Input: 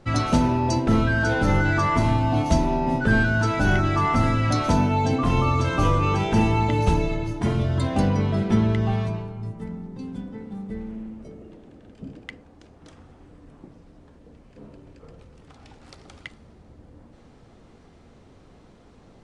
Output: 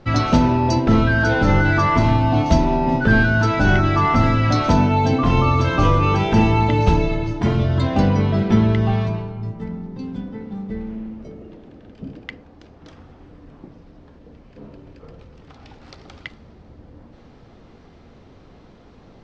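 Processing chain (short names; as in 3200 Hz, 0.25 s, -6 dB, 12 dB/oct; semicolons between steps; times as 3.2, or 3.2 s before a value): LPF 5700 Hz 24 dB/oct; gain +4.5 dB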